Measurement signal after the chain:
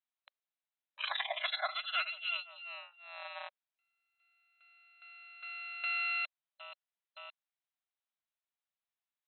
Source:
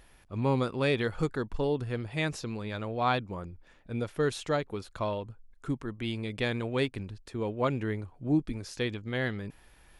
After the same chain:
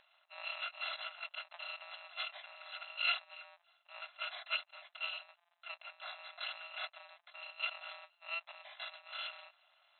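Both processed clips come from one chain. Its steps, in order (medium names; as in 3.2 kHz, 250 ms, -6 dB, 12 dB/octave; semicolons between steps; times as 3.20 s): bit-reversed sample order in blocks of 256 samples; brick-wall FIR band-pass 570–4100 Hz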